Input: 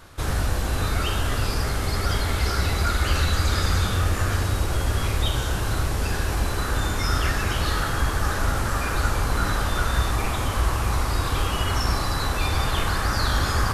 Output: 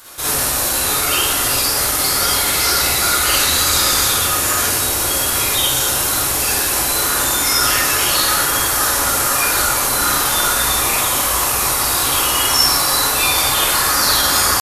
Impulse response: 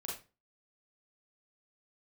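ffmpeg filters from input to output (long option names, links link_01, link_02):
-filter_complex "[0:a]atempo=0.94,aemphasis=mode=production:type=riaa[link_01];[1:a]atrim=start_sample=2205,asetrate=35721,aresample=44100[link_02];[link_01][link_02]afir=irnorm=-1:irlink=0,volume=6.5dB"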